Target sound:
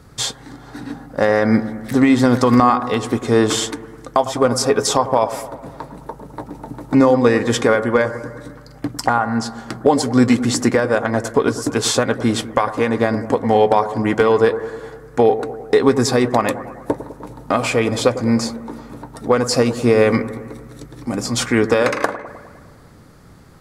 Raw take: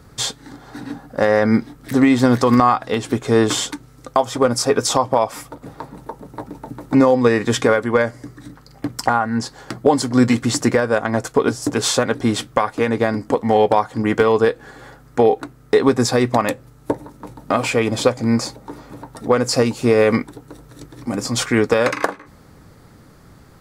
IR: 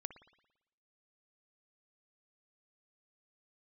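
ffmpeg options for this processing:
-filter_complex "[0:a]asplit=2[s0][s1];[1:a]atrim=start_sample=2205,asetrate=24696,aresample=44100[s2];[s1][s2]afir=irnorm=-1:irlink=0,volume=2.66[s3];[s0][s3]amix=inputs=2:normalize=0,volume=0.316"

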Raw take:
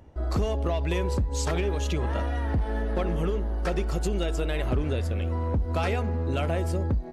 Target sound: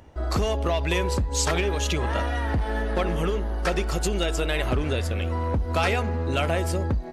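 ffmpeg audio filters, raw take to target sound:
-af "tiltshelf=f=750:g=-4,volume=1.68"

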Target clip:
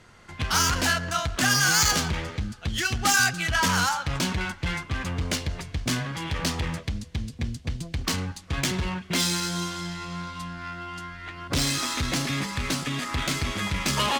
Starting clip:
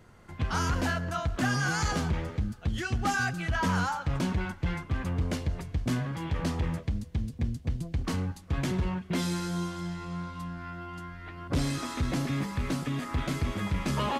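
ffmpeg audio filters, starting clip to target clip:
-af "adynamicsmooth=sensitivity=8:basefreq=4400,crystalizer=i=9.5:c=0"

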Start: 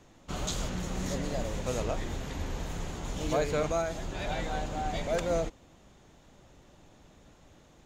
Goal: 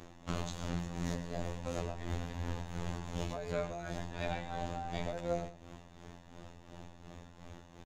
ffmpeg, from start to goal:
-af "highshelf=f=4900:g=-7.5,acompressor=threshold=0.01:ratio=6,tremolo=f=2.8:d=0.58,afftfilt=real='hypot(re,im)*cos(PI*b)':imag='0':win_size=2048:overlap=0.75,aecho=1:1:115:0.224,volume=3.35"

